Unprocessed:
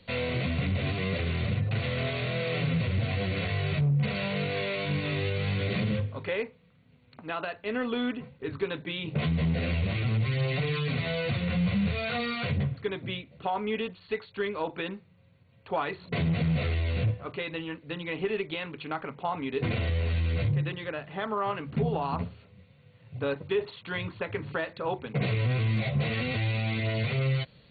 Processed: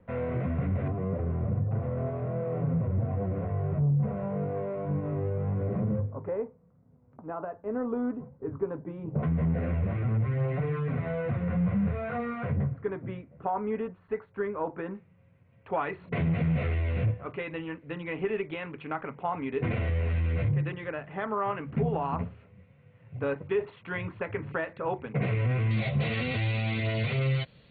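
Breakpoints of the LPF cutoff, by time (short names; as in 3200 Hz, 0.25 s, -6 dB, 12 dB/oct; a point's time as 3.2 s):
LPF 24 dB/oct
1500 Hz
from 0.88 s 1100 Hz
from 9.23 s 1600 Hz
from 14.95 s 2400 Hz
from 25.71 s 3900 Hz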